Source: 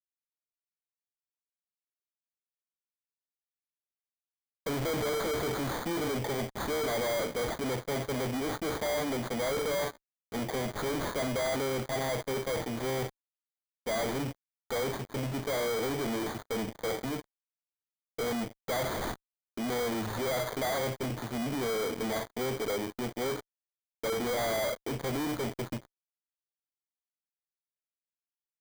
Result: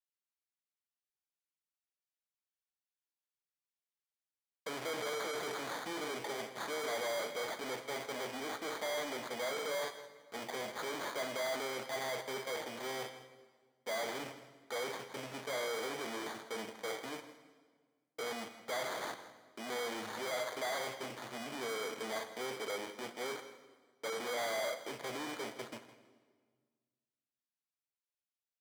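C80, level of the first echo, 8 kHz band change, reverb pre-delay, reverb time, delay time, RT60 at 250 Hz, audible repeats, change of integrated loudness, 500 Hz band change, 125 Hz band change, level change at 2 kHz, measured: 11.0 dB, −15.0 dB, −5.5 dB, 3 ms, 1.6 s, 162 ms, 1.9 s, 2, −7.0 dB, −7.5 dB, −20.0 dB, −3.5 dB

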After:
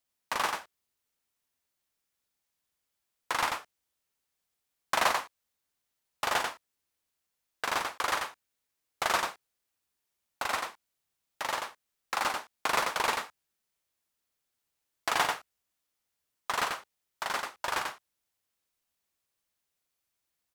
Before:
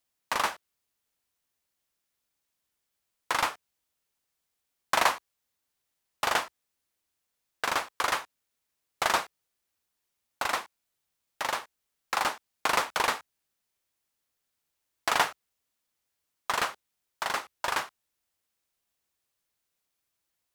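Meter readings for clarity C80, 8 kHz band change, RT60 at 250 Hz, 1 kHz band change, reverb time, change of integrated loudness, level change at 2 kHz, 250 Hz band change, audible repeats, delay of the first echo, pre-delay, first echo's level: no reverb audible, −1.5 dB, no reverb audible, −1.5 dB, no reverb audible, −2.0 dB, −1.5 dB, −1.5 dB, 1, 91 ms, no reverb audible, −4.0 dB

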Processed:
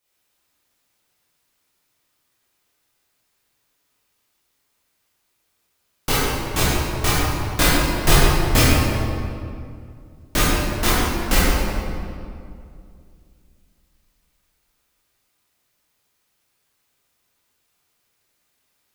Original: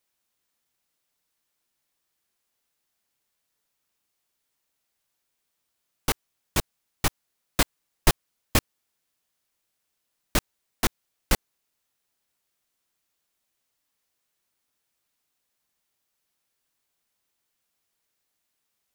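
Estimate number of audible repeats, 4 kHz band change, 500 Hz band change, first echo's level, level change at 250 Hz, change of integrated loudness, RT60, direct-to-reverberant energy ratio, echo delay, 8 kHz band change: no echo audible, +9.5 dB, +11.0 dB, no echo audible, +11.5 dB, +8.5 dB, 2.3 s, −10.0 dB, no echo audible, +8.0 dB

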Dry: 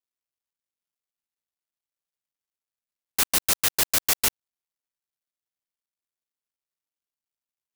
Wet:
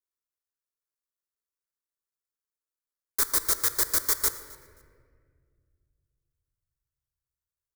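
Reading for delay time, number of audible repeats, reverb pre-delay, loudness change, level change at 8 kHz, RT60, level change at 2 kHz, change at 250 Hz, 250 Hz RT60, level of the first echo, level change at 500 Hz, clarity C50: 265 ms, 1, 3 ms, −2.5 dB, −2.5 dB, 2.0 s, −5.5 dB, −6.0 dB, 2.9 s, −23.0 dB, −3.0 dB, 11.0 dB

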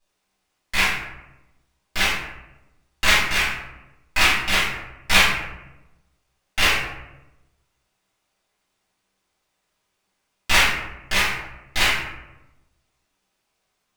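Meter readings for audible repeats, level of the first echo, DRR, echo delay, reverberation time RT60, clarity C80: no echo audible, no echo audible, −12.0 dB, no echo audible, 0.95 s, 4.5 dB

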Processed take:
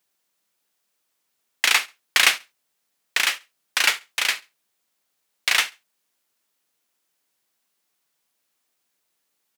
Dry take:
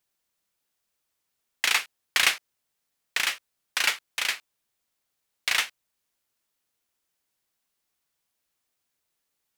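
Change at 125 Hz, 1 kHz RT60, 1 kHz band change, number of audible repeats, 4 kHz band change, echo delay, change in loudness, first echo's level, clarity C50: can't be measured, no reverb audible, +5.0 dB, 2, +5.0 dB, 69 ms, +5.0 dB, −22.0 dB, no reverb audible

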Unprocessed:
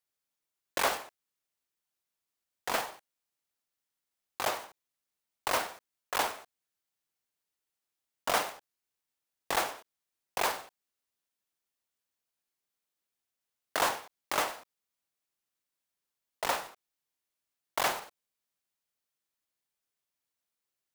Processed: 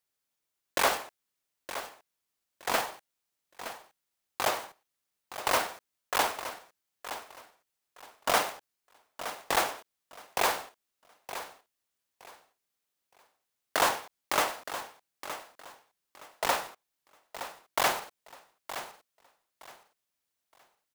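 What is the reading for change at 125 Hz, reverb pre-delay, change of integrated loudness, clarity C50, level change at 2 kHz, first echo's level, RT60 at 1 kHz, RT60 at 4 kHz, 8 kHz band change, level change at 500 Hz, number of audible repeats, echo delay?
+3.5 dB, no reverb audible, +1.5 dB, no reverb audible, +3.5 dB, −12.0 dB, no reverb audible, no reverb audible, +3.5 dB, +3.5 dB, 2, 918 ms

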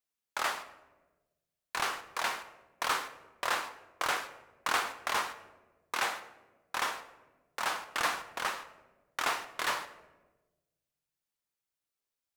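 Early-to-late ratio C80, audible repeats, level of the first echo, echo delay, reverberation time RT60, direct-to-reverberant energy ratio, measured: 15.0 dB, no echo audible, no echo audible, no echo audible, 1.2 s, 9.0 dB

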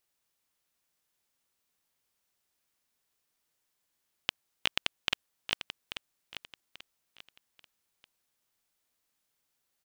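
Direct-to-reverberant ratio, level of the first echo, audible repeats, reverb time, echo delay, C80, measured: no reverb audible, −10.5 dB, 3, no reverb audible, 837 ms, no reverb audible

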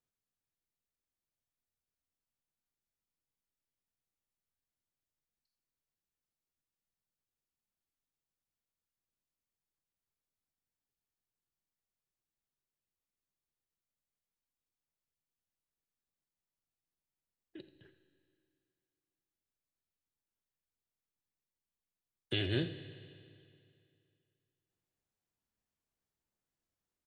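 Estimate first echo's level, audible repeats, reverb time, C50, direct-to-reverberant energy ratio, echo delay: −14.5 dB, 1, 2.5 s, 10.0 dB, 9.5 dB, 84 ms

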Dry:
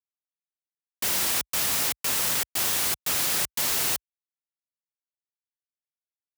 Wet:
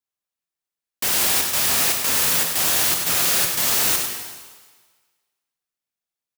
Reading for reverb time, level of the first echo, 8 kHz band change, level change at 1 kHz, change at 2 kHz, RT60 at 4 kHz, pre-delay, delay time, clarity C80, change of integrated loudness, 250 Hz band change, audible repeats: 1.5 s, −8.5 dB, +6.5 dB, +6.5 dB, +6.5 dB, 1.5 s, 15 ms, 98 ms, 4.0 dB, +6.5 dB, +6.5 dB, 1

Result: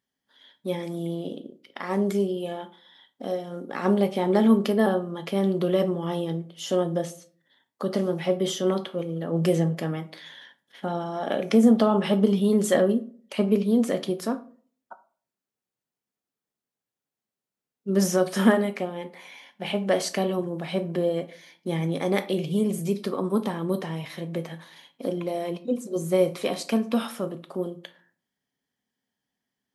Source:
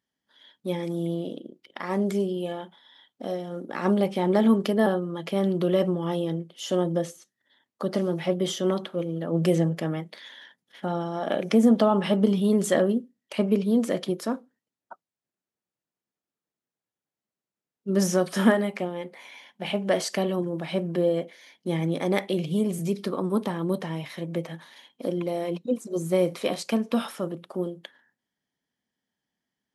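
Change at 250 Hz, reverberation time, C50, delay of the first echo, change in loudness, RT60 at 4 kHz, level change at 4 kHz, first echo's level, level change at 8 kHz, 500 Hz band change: +0.5 dB, 0.45 s, 16.5 dB, no echo audible, +0.5 dB, 0.25 s, +0.5 dB, no echo audible, +1.0 dB, +1.0 dB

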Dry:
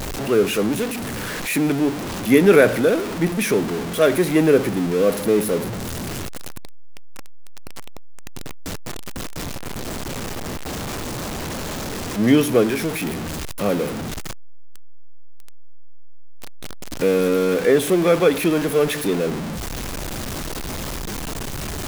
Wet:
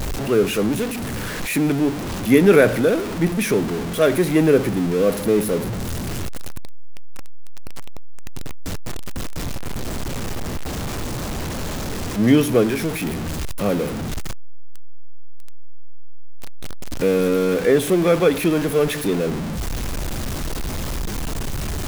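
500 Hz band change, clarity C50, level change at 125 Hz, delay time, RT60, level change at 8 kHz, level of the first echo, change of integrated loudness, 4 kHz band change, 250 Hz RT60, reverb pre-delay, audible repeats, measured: −0.5 dB, no reverb audible, +2.5 dB, no echo audible, no reverb audible, −1.0 dB, no echo audible, 0.0 dB, −1.0 dB, no reverb audible, no reverb audible, no echo audible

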